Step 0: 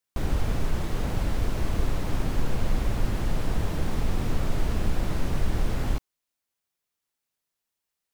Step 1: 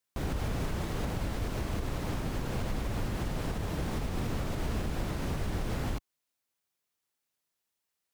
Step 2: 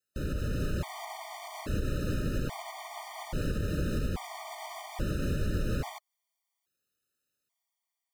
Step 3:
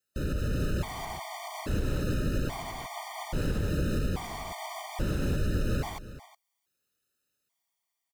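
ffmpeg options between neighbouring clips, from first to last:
ffmpeg -i in.wav -af "highpass=frequency=55:poles=1,alimiter=limit=-23.5dB:level=0:latency=1:release=145" out.wav
ffmpeg -i in.wav -af "dynaudnorm=framelen=170:gausssize=7:maxgain=3dB,afftfilt=real='re*gt(sin(2*PI*0.6*pts/sr)*(1-2*mod(floor(b*sr/1024/610),2)),0)':imag='im*gt(sin(2*PI*0.6*pts/sr)*(1-2*mod(floor(b*sr/1024/610),2)),0)':win_size=1024:overlap=0.75" out.wav
ffmpeg -i in.wav -filter_complex "[0:a]asplit=2[link_01][link_02];[link_02]asoftclip=type=tanh:threshold=-29.5dB,volume=-8dB[link_03];[link_01][link_03]amix=inputs=2:normalize=0,aecho=1:1:365:0.178" out.wav

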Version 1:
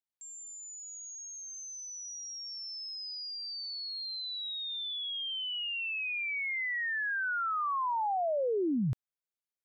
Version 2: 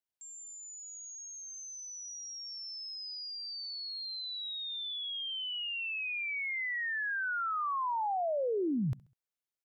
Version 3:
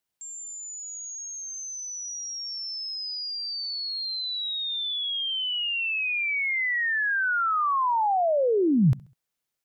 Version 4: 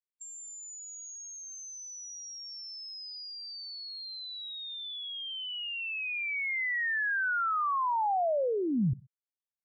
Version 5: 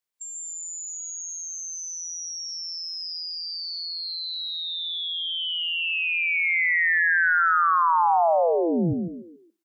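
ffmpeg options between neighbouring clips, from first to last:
ffmpeg -i in.wav -af "aecho=1:1:67|134|201:0.075|0.03|0.012,volume=-1.5dB" out.wav
ffmpeg -i in.wav -af "equalizer=frequency=160:width=1.9:gain=4.5,volume=9dB" out.wav
ffmpeg -i in.wav -filter_complex "[0:a]afftfilt=real='re*gte(hypot(re,im),0.0447)':imag='im*gte(hypot(re,im),0.0447)':win_size=1024:overlap=0.75,acrossover=split=210|580|2100[link_01][link_02][link_03][link_04];[link_01]acompressor=threshold=-27dB:ratio=4[link_05];[link_02]acompressor=threshold=-35dB:ratio=4[link_06];[link_03]acompressor=threshold=-28dB:ratio=4[link_07];[link_04]acompressor=threshold=-42dB:ratio=4[link_08];[link_05][link_06][link_07][link_08]amix=inputs=4:normalize=0,volume=-2dB" out.wav
ffmpeg -i in.wav -filter_complex "[0:a]lowshelf=frequency=270:gain=-7,asplit=2[link_01][link_02];[link_02]asplit=4[link_03][link_04][link_05][link_06];[link_03]adelay=141,afreqshift=50,volume=-4dB[link_07];[link_04]adelay=282,afreqshift=100,volume=-13.4dB[link_08];[link_05]adelay=423,afreqshift=150,volume=-22.7dB[link_09];[link_06]adelay=564,afreqshift=200,volume=-32.1dB[link_10];[link_07][link_08][link_09][link_10]amix=inputs=4:normalize=0[link_11];[link_01][link_11]amix=inputs=2:normalize=0,volume=8dB" out.wav

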